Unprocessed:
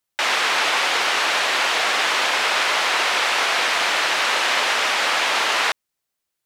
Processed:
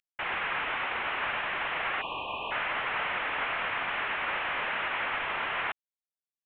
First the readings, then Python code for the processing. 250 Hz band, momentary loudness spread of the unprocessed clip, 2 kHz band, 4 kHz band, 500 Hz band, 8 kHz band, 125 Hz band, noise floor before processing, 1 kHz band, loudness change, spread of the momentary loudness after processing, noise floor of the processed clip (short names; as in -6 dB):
-9.0 dB, 1 LU, -11.0 dB, -18.0 dB, -12.0 dB, under -40 dB, n/a, -80 dBFS, -10.5 dB, -12.5 dB, 3 LU, under -85 dBFS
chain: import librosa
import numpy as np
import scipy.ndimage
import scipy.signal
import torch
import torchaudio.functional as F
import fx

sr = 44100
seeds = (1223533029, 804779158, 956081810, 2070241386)

y = fx.cvsd(x, sr, bps=16000)
y = fx.spec_erase(y, sr, start_s=2.01, length_s=0.5, low_hz=1200.0, high_hz=2400.0)
y = fx.tilt_shelf(y, sr, db=-8.0, hz=770.0)
y = F.gain(torch.from_numpy(y), -8.5).numpy()